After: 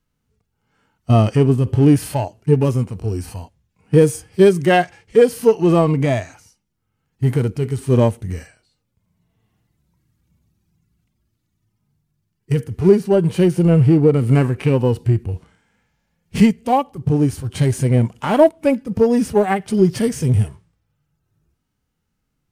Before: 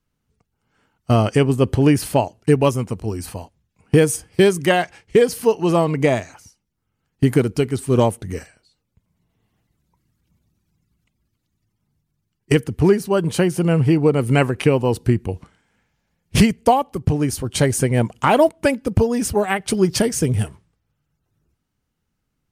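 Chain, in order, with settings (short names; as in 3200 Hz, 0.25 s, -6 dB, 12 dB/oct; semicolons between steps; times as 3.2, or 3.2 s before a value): in parallel at -6 dB: overloaded stage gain 17 dB; on the sum: harmonic-percussive split percussive -16 dB; gain +2 dB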